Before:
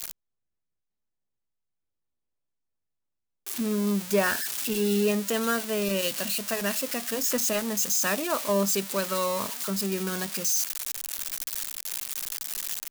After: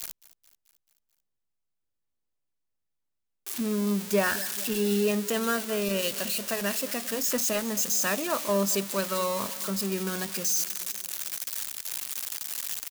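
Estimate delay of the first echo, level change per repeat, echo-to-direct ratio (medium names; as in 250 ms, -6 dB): 218 ms, -4.5 dB, -16.0 dB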